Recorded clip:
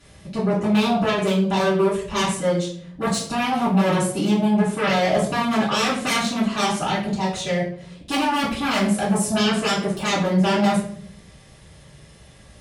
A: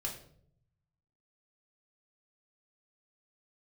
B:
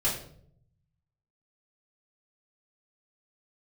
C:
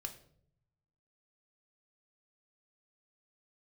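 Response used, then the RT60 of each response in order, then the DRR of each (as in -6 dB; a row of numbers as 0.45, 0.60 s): B; 0.60, 0.60, 0.65 s; -2.0, -8.5, 4.5 dB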